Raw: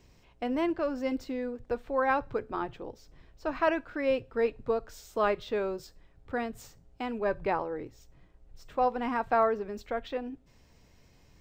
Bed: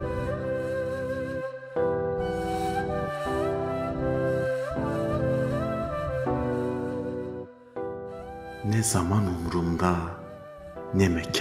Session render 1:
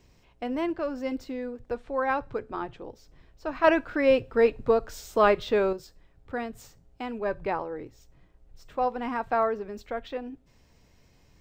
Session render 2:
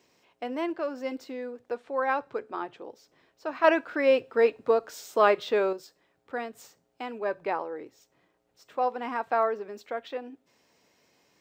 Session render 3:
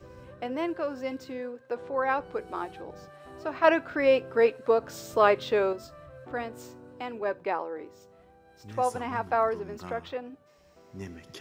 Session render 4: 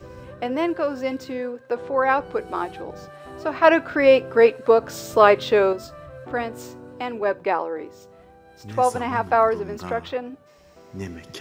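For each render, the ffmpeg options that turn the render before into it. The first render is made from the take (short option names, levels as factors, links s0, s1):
-filter_complex "[0:a]asettb=1/sr,asplit=3[s0][s1][s2];[s0]atrim=end=1.754[s3];[s1]atrim=start=1.75:end=2.8,asetpts=PTS-STARTPTS,afade=t=in:d=0.004:c=qsin,afade=t=out:st=1.046:d=0.004:c=qsin,lowpass=f=11000:w=0.5412,lowpass=f=11000:w=1.3066[s4];[s2]atrim=start=2.796[s5];[s3][s4]acrossfade=d=0.004:c1=hsin:c2=qsin[s6];[s6][s5]acrossfade=d=0.004:c1=qsin:c2=hsin,asettb=1/sr,asplit=3[s7][s8][s9];[s7]atrim=end=3.644[s10];[s8]atrim=start=3.64:end=5.73,asetpts=PTS-STARTPTS,afade=t=in:d=0.004:c=qsin,afade=t=out:st=2.086:d=0.004:c=qsin,acontrast=78[s11];[s9]atrim=start=5.726[s12];[s10][s11]acrossfade=d=0.004:c1=hsin:c2=qsin[s13];[s13][s12]acrossfade=d=0.004:c1=qsin:c2=hsin"
-af "highpass=310"
-filter_complex "[1:a]volume=0.119[s0];[0:a][s0]amix=inputs=2:normalize=0"
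-af "volume=2.37,alimiter=limit=0.794:level=0:latency=1"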